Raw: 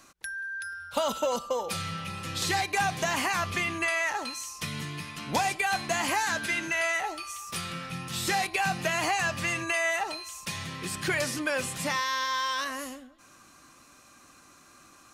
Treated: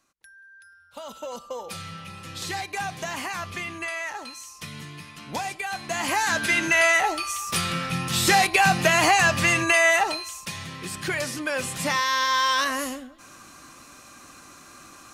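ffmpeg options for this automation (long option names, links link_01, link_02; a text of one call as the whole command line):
ffmpeg -i in.wav -af "volume=16.5dB,afade=type=in:start_time=0.88:duration=0.79:silence=0.281838,afade=type=in:start_time=5.8:duration=0.96:silence=0.237137,afade=type=out:start_time=9.97:duration=0.54:silence=0.375837,afade=type=in:start_time=11.42:duration=1.1:silence=0.421697" out.wav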